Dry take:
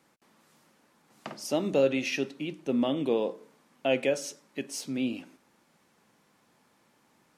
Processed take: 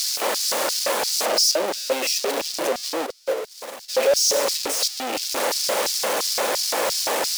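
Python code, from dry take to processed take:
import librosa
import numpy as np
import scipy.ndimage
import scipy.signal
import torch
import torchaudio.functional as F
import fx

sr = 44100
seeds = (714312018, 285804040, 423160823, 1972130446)

y = np.sign(x) * np.sqrt(np.mean(np.square(x)))
y = fx.filter_lfo_highpass(y, sr, shape='square', hz=2.9, low_hz=530.0, high_hz=4900.0, q=3.6)
y = fx.upward_expand(y, sr, threshold_db=-38.0, expansion=2.5, at=(3.05, 3.88), fade=0.02)
y = y * librosa.db_to_amplitude(8.0)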